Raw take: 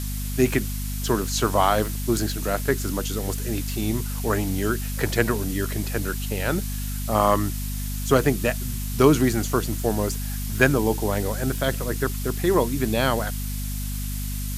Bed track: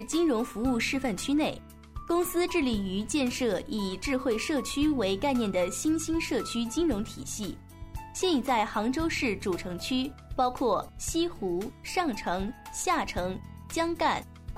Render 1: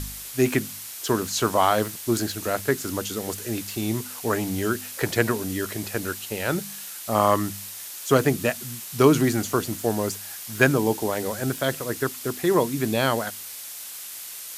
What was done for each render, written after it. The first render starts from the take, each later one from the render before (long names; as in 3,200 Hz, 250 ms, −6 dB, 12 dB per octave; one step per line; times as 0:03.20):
hum removal 50 Hz, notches 5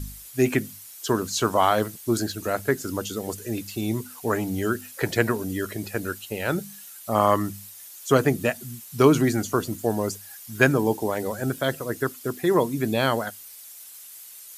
broadband denoise 11 dB, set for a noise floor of −38 dBFS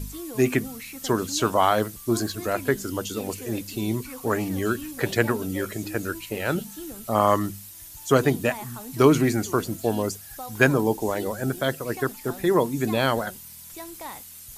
mix in bed track −12 dB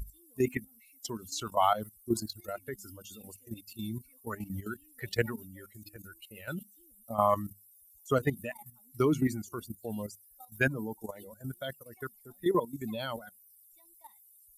spectral dynamics exaggerated over time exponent 2
output level in coarse steps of 12 dB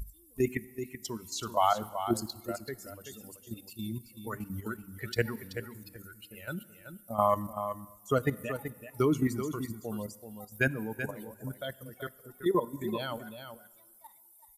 on a send: single-tap delay 381 ms −9.5 dB
on the sum: dense smooth reverb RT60 1.8 s, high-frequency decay 0.75×, DRR 18.5 dB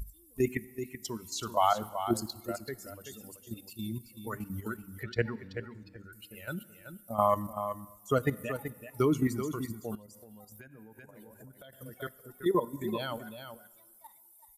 0:05.03–0:06.13: high-frequency loss of the air 170 metres
0:09.95–0:11.73: downward compressor 16 to 1, threshold −47 dBFS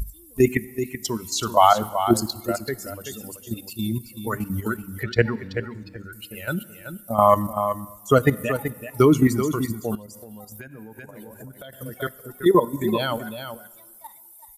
level +11 dB
brickwall limiter −3 dBFS, peak gain reduction 3 dB